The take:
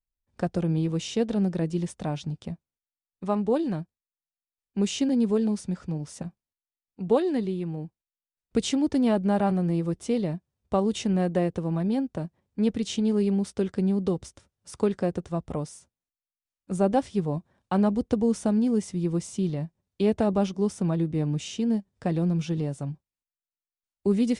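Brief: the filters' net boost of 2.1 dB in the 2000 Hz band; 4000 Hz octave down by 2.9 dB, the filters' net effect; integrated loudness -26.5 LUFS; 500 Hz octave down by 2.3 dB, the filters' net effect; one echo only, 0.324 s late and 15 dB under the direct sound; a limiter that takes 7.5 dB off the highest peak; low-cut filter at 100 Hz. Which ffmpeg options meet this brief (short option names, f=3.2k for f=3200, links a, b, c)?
-af "highpass=100,equalizer=f=500:t=o:g=-3,equalizer=f=2k:t=o:g=4.5,equalizer=f=4k:t=o:g=-6,alimiter=limit=-19.5dB:level=0:latency=1,aecho=1:1:324:0.178,volume=3dB"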